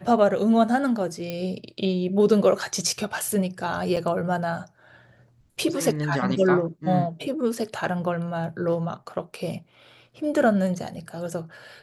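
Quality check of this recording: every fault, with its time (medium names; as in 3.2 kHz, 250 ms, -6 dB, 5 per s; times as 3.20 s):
1.30 s: pop -16 dBFS
3.96–3.97 s: dropout 6.7 ms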